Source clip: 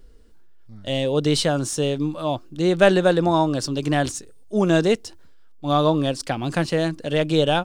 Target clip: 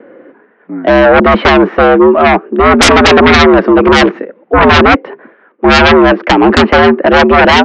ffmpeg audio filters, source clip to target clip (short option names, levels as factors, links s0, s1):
-filter_complex "[0:a]highpass=f=160:t=q:w=0.5412,highpass=f=160:t=q:w=1.307,lowpass=f=2100:t=q:w=0.5176,lowpass=f=2100:t=q:w=0.7071,lowpass=f=2100:t=q:w=1.932,afreqshift=68,asplit=2[s0][s1];[s1]acompressor=threshold=0.0447:ratio=6,volume=0.891[s2];[s0][s2]amix=inputs=2:normalize=0,aeval=exprs='0.841*sin(PI/2*7.08*val(0)/0.841)':c=same,agate=range=0.0224:threshold=0.00355:ratio=3:detection=peak"